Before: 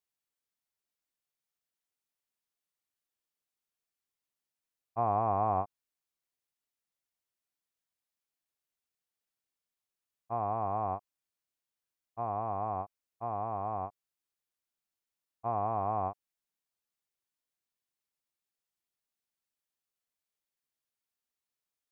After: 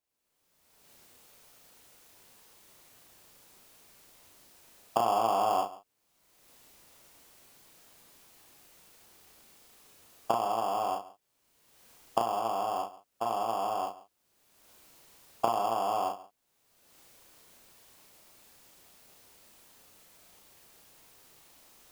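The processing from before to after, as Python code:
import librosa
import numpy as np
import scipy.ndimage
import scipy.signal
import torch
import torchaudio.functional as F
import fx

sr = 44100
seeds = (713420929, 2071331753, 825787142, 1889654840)

p1 = fx.recorder_agc(x, sr, target_db=-24.0, rise_db_per_s=33.0, max_gain_db=30)
p2 = scipy.signal.sosfilt(scipy.signal.butter(2, 310.0, 'highpass', fs=sr, output='sos'), p1)
p3 = fx.sample_hold(p2, sr, seeds[0], rate_hz=2000.0, jitter_pct=0)
p4 = p2 + (p3 * 10.0 ** (-9.0 / 20.0))
p5 = fx.doubler(p4, sr, ms=35.0, db=-4.0)
y = p5 + 10.0 ** (-18.0 / 20.0) * np.pad(p5, (int(140 * sr / 1000.0), 0))[:len(p5)]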